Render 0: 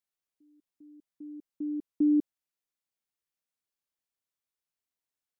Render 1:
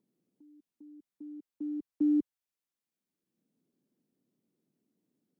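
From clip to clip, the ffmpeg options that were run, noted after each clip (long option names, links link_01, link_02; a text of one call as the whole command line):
ffmpeg -i in.wav -filter_complex "[0:a]acrossover=split=100|200|250[link_01][link_02][link_03][link_04];[link_01]acrusher=samples=42:mix=1:aa=0.000001[link_05];[link_03]acompressor=mode=upward:threshold=-46dB:ratio=2.5[link_06];[link_05][link_02][link_06][link_04]amix=inputs=4:normalize=0,volume=-2.5dB" out.wav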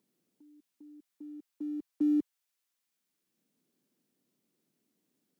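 ffmpeg -i in.wav -af "tiltshelf=frequency=680:gain=-5.5,volume=3dB" out.wav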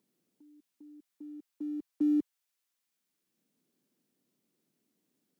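ffmpeg -i in.wav -af anull out.wav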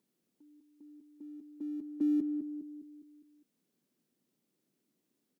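ffmpeg -i in.wav -filter_complex "[0:a]asplit=2[link_01][link_02];[link_02]adelay=204,lowpass=frequency=910:poles=1,volume=-6dB,asplit=2[link_03][link_04];[link_04]adelay=204,lowpass=frequency=910:poles=1,volume=0.52,asplit=2[link_05][link_06];[link_06]adelay=204,lowpass=frequency=910:poles=1,volume=0.52,asplit=2[link_07][link_08];[link_08]adelay=204,lowpass=frequency=910:poles=1,volume=0.52,asplit=2[link_09][link_10];[link_10]adelay=204,lowpass=frequency=910:poles=1,volume=0.52,asplit=2[link_11][link_12];[link_12]adelay=204,lowpass=frequency=910:poles=1,volume=0.52[link_13];[link_01][link_03][link_05][link_07][link_09][link_11][link_13]amix=inputs=7:normalize=0,volume=-2dB" out.wav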